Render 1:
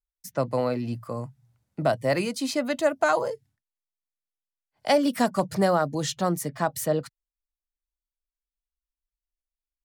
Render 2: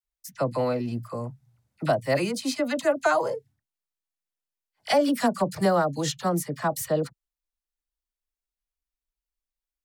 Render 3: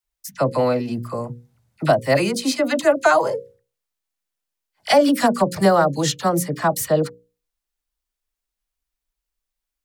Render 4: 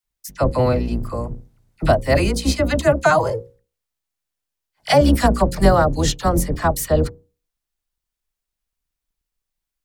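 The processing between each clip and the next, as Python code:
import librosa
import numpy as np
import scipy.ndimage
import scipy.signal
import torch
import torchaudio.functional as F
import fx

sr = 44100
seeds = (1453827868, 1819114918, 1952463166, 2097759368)

y1 = fx.dispersion(x, sr, late='lows', ms=42.0, hz=1100.0)
y2 = fx.hum_notches(y1, sr, base_hz=60, count=9)
y2 = F.gain(torch.from_numpy(y2), 7.0).numpy()
y3 = fx.octave_divider(y2, sr, octaves=2, level_db=3.0)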